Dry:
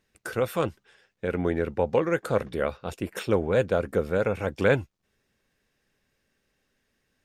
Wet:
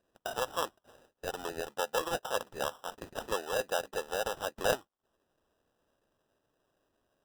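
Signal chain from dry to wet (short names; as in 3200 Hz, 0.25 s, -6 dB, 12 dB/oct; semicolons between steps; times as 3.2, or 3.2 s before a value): HPF 940 Hz 12 dB/oct; treble ducked by the level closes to 1600 Hz, closed at -33 dBFS; high shelf 6800 Hz -12 dB; sample-rate reducer 2200 Hz, jitter 0%; gain +1.5 dB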